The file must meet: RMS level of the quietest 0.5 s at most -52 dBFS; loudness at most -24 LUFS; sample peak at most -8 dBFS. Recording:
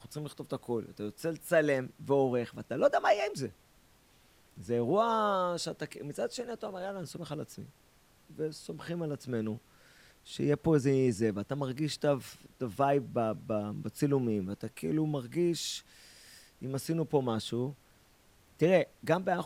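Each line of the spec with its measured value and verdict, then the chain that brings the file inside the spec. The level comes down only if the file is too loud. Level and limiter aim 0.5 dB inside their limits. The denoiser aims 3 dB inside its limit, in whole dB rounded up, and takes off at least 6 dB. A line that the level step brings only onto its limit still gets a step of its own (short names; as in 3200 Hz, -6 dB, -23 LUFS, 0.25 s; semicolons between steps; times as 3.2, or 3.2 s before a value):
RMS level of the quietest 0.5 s -64 dBFS: OK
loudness -32.5 LUFS: OK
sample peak -12.5 dBFS: OK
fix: none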